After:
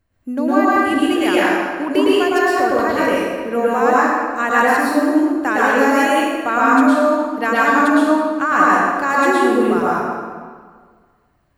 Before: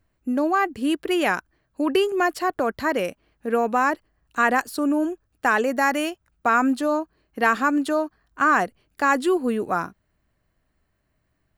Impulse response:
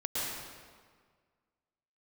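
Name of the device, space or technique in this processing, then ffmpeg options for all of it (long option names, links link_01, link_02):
stairwell: -filter_complex "[1:a]atrim=start_sample=2205[link_01];[0:a][link_01]afir=irnorm=-1:irlink=0,asettb=1/sr,asplit=3[link_02][link_03][link_04];[link_02]atrim=end=6.054[link_05];[link_03]atrim=start=6.05:end=6.61,asetpts=PTS-STARTPTS,afade=type=in:duration=0.004:curve=qsin,afade=type=out:start_time=0.556:duration=0.004:curve=qsin,bandreject=frequency=5300:width=5.8[link_06];[link_04]atrim=start=6.606[link_07];[link_05][link_06]acrossfade=duration=0.004:curve1=hsin:curve2=qsin[link_08];[link_08][link_07]acrossfade=duration=0.004:curve1=qsin:curve2=hsin,volume=1dB"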